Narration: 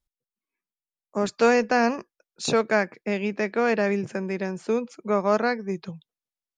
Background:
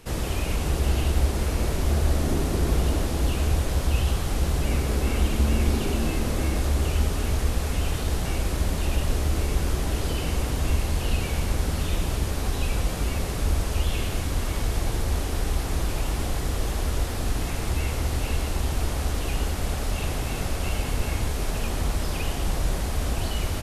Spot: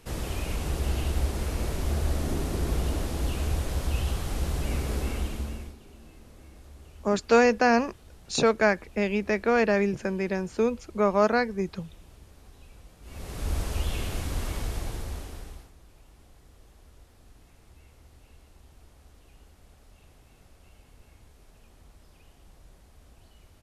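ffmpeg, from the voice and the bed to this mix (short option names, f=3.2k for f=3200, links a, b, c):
-filter_complex "[0:a]adelay=5900,volume=0dB[a];[1:a]volume=16dB,afade=t=out:st=4.98:d=0.77:silence=0.0944061,afade=t=in:st=13.02:d=0.56:silence=0.0891251,afade=t=out:st=14.46:d=1.26:silence=0.0630957[b];[a][b]amix=inputs=2:normalize=0"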